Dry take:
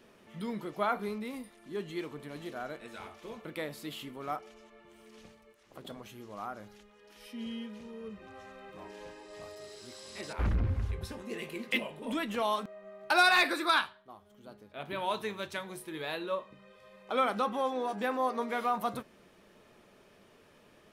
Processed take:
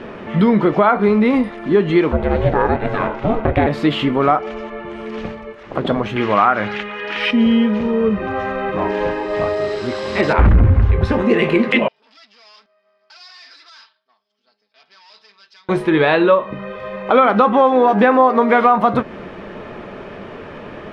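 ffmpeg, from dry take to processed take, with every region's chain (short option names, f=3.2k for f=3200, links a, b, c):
-filter_complex "[0:a]asettb=1/sr,asplit=3[a][b][c];[a]atrim=end=2.124[d];[b]atrim=start=2.12:end=3.67,asetpts=PTS-STARTPTS,afade=t=in:d=0.004:c=qsin,afade=t=out:st=1.546:d=0.004:c=qsin,aeval=exprs='val(0)*sin(2*PI*220*n/s)':c=same,tiltshelf=f=1.4k:g=4[e];[c]atrim=start=3.666[f];[d][e]acrossfade=d=0.004:c1=hsin:c2=qsin[g];[g][f]acrossfade=d=0.004:c1=qsin:c2=hsin,asettb=1/sr,asplit=3[h][i][j];[h]atrim=end=6.164[k];[i]atrim=start=6.16:end=7.31,asetpts=PTS-STARTPTS,afade=t=in:d=0.004:c=qsin,afade=t=out:st=1.146:d=0.004:c=qsin,highpass=83,equalizer=f=2.4k:w=0.63:g=14[l];[j]atrim=start=7.306[m];[k][l]acrossfade=d=0.004:c1=hsin:c2=qsin[n];[n][m]acrossfade=d=0.004:c1=qsin:c2=hsin,asettb=1/sr,asplit=3[o][p][q];[o]atrim=end=11.884[r];[p]atrim=start=11.88:end=15.69,asetpts=PTS-STARTPTS,afade=t=in:d=0.004:c=qsin,afade=t=out:st=3.806:d=0.004:c=qsin,aecho=1:1:4.5:0.81,atrim=end_sample=168021,aeval=exprs='(tanh(79.4*val(0)+0.65)-tanh(0.65))/79.4':c=same,bandpass=f=5k:t=q:w=14[s];[q]atrim=start=15.686[t];[r][s]acrossfade=d=0.004:c1=hsin:c2=qsin[u];[u][t]acrossfade=d=0.004:c1=qsin:c2=hsin,lowpass=2.1k,acompressor=threshold=-38dB:ratio=4,alimiter=level_in=29dB:limit=-1dB:release=50:level=0:latency=1,volume=-1dB"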